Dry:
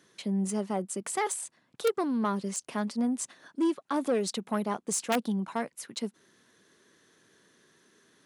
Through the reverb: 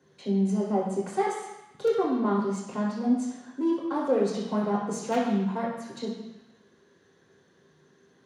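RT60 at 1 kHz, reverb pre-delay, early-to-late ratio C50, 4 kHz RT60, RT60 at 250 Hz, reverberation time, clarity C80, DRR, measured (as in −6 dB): 1.1 s, 3 ms, 3.0 dB, 1.1 s, 0.95 s, 1.0 s, 5.5 dB, −5.0 dB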